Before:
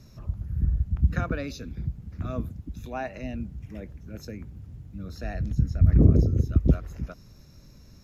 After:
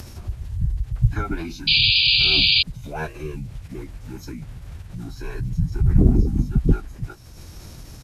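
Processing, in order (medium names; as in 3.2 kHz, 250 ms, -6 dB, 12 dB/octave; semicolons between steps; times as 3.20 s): doubling 15 ms -8 dB; bit crusher 9-bit; formant-preserving pitch shift -9 st; upward compressor, threshold -32 dBFS; painted sound noise, 1.67–2.63 s, 2.3–4.9 kHz -20 dBFS; trim +3 dB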